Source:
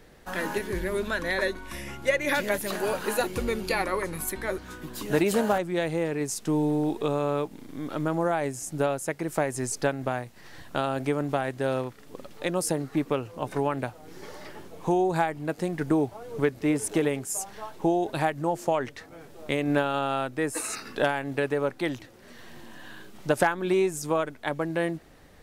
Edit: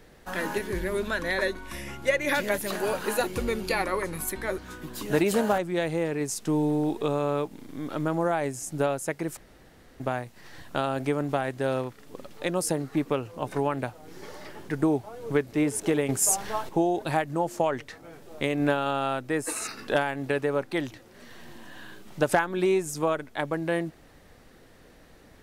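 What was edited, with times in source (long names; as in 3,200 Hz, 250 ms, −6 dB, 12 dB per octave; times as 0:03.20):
0:09.37–0:10.00: fill with room tone
0:14.69–0:15.77: remove
0:17.17–0:17.77: clip gain +8.5 dB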